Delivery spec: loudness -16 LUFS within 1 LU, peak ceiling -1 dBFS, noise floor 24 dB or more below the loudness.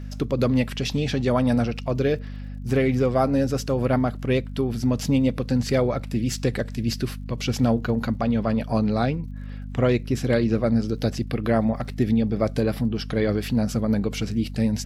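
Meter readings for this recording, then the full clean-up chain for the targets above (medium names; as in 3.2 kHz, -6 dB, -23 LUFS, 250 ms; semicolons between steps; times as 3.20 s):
tick rate 55 per s; hum 50 Hz; highest harmonic 250 Hz; hum level -31 dBFS; loudness -24.0 LUFS; peak level -9.5 dBFS; loudness target -16.0 LUFS
-> de-click; de-hum 50 Hz, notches 5; trim +8 dB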